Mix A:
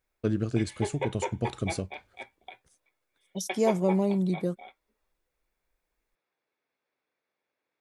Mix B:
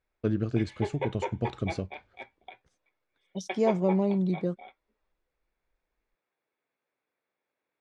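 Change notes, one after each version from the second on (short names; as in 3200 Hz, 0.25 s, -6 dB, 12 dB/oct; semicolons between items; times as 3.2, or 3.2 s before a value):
master: add air absorption 140 m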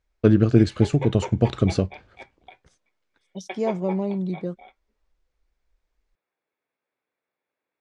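first voice +11.5 dB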